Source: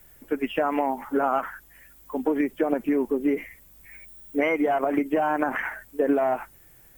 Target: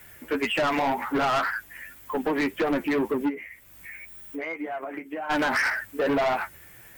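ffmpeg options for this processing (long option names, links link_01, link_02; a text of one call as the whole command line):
ffmpeg -i in.wav -filter_complex "[0:a]highpass=43,equalizer=frequency=2000:width_type=o:width=1.6:gain=8.5,asplit=3[link_01][link_02][link_03];[link_01]afade=type=out:start_time=3.27:duration=0.02[link_04];[link_02]acompressor=threshold=-44dB:ratio=2.5,afade=type=in:start_time=3.27:duration=0.02,afade=type=out:start_time=5.29:duration=0.02[link_05];[link_03]afade=type=in:start_time=5.29:duration=0.02[link_06];[link_04][link_05][link_06]amix=inputs=3:normalize=0,flanger=delay=8.3:depth=4.5:regen=35:speed=1.9:shape=triangular,asoftclip=type=tanh:threshold=-28.5dB,volume=8dB" out.wav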